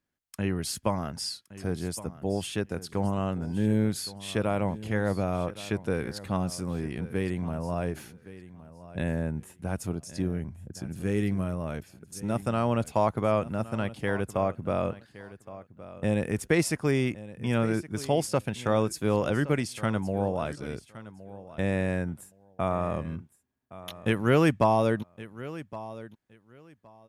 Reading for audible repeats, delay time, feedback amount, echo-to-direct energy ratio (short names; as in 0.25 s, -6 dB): 2, 1.117 s, 18%, -16.5 dB